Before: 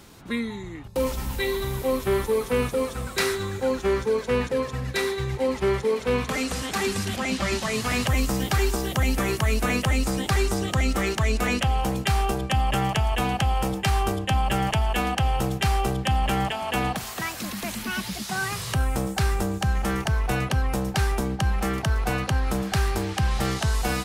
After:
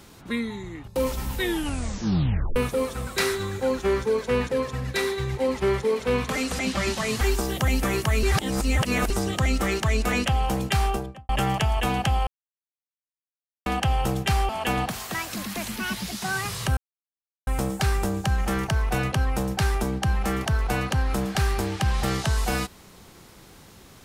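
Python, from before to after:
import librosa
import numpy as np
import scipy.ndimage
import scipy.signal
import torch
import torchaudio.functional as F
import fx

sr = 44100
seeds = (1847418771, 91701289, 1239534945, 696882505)

y = fx.studio_fade_out(x, sr, start_s=12.18, length_s=0.46)
y = fx.edit(y, sr, fx.tape_stop(start_s=1.36, length_s=1.2),
    fx.cut(start_s=6.59, length_s=0.65),
    fx.cut(start_s=7.86, length_s=0.7),
    fx.reverse_span(start_s=9.58, length_s=0.87),
    fx.silence(start_s=13.62, length_s=1.39),
    fx.cut(start_s=15.84, length_s=0.72),
    fx.insert_silence(at_s=18.84, length_s=0.7), tone=tone)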